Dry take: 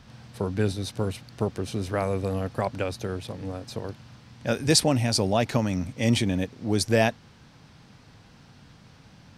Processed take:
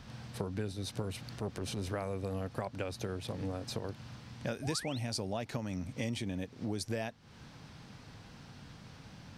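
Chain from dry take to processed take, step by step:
0:01.02–0:01.89: transient designer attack −11 dB, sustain +3 dB
downward compressor 6 to 1, threshold −34 dBFS, peak gain reduction 17.5 dB
0:04.62–0:04.99: sound drawn into the spectrogram rise 580–4,500 Hz −47 dBFS

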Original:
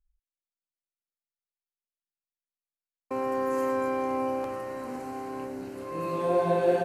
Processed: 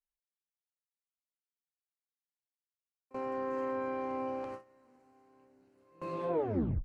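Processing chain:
turntable brake at the end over 0.53 s
treble cut that deepens with the level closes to 2,300 Hz, closed at −22 dBFS
noise gate with hold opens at −23 dBFS
level −7.5 dB

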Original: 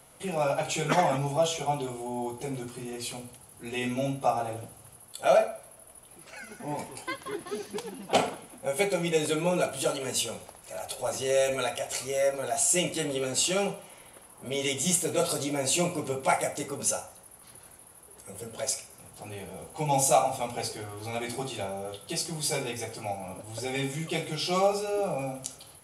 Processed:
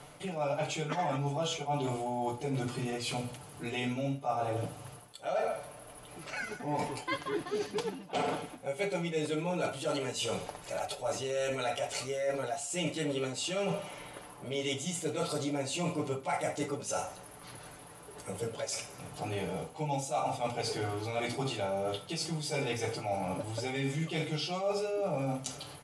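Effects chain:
comb filter 6.8 ms, depth 49%
reversed playback
downward compressor 8 to 1, threshold −36 dBFS, peak gain reduction 20 dB
reversed playback
Bessel low-pass filter 5,700 Hz, order 2
level +6 dB

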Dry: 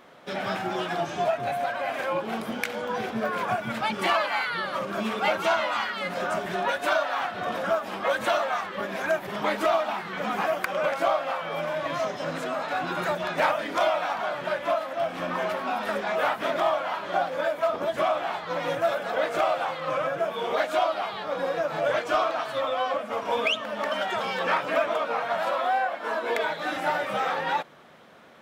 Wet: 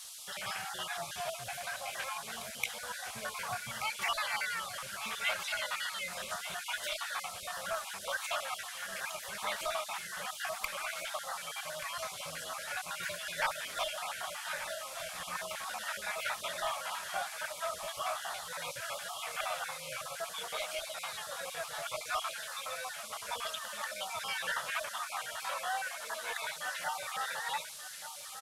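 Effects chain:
time-frequency cells dropped at random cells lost 39%
guitar amp tone stack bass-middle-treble 10-0-10
noise in a band 2,900–12,000 Hz −48 dBFS
low-shelf EQ 75 Hz +10.5 dB
single-tap delay 1,180 ms −11.5 dB

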